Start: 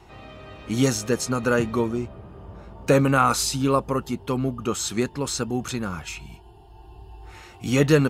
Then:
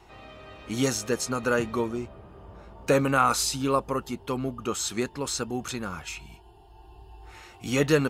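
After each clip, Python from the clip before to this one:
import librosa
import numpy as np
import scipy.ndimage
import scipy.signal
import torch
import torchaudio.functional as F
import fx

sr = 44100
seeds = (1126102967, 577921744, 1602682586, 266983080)

y = fx.peak_eq(x, sr, hz=130.0, db=-5.5, octaves=2.4)
y = y * librosa.db_to_amplitude(-2.0)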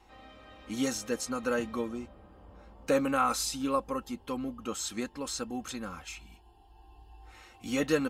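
y = x + 0.59 * np.pad(x, (int(3.8 * sr / 1000.0), 0))[:len(x)]
y = y * librosa.db_to_amplitude(-7.0)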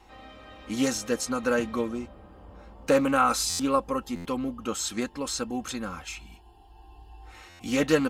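y = fx.buffer_glitch(x, sr, at_s=(3.49, 4.15, 7.49), block=512, repeats=8)
y = fx.doppler_dist(y, sr, depth_ms=0.1)
y = y * librosa.db_to_amplitude(5.0)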